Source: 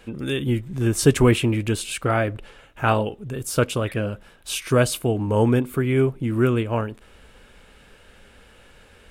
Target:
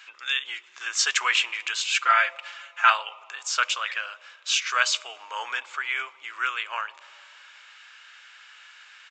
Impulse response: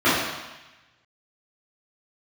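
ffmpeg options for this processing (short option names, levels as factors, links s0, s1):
-filter_complex "[0:a]highpass=f=1200:w=0.5412,highpass=f=1200:w=1.3066,asettb=1/sr,asplit=3[s0][s1][s2];[s0]atrim=end=1.944[s3];[s1]atrim=start=1.94:end=2.9,asetpts=PTS-STARTPTS,afade=t=in:d=0.004:c=qsin,afade=t=out:st=0.956:d=0.004:c=qsin,aecho=1:1:5.8:0.97,atrim=end_sample=42336[s4];[s2]atrim=start=2.896[s5];[s3][s4]acrossfade=d=0.004:c1=hsin:c2=qsin[s6];[s6][s5]acrossfade=d=0.004:c1=qsin:c2=hsin,asplit=2[s7][s8];[s8]asuperstop=centerf=1600:order=4:qfactor=1.5[s9];[1:a]atrim=start_sample=2205,asetrate=22932,aresample=44100[s10];[s9][s10]afir=irnorm=-1:irlink=0,volume=0.00841[s11];[s7][s11]amix=inputs=2:normalize=0,aresample=16000,aresample=44100,volume=2"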